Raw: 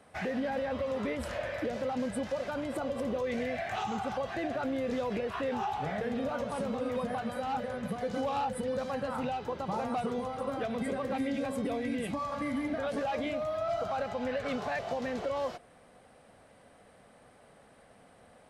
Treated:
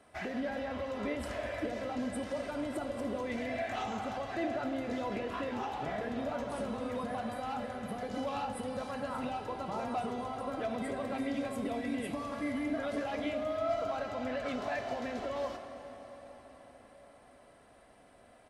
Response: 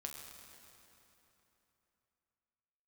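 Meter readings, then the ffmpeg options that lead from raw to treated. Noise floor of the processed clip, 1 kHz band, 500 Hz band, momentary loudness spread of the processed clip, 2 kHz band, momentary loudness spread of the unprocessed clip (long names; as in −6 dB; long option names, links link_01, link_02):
−59 dBFS, −3.0 dB, −3.0 dB, 4 LU, −2.0 dB, 2 LU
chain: -filter_complex "[0:a]aecho=1:1:3:0.39,asplit=2[link_01][link_02];[1:a]atrim=start_sample=2205,asetrate=25578,aresample=44100[link_03];[link_02][link_03]afir=irnorm=-1:irlink=0,volume=0.5dB[link_04];[link_01][link_04]amix=inputs=2:normalize=0,volume=-8.5dB"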